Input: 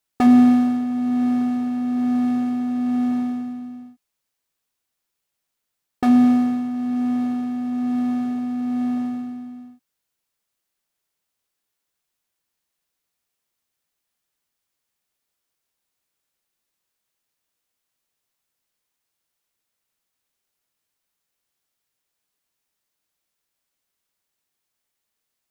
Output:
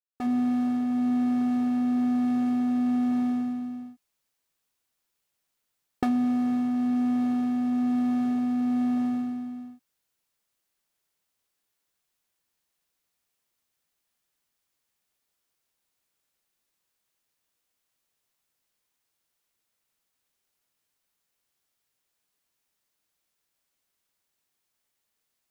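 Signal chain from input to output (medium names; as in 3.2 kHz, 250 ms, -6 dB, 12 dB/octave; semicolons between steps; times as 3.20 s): fade-in on the opening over 1.17 s; compression 12:1, threshold -22 dBFS, peak gain reduction 11 dB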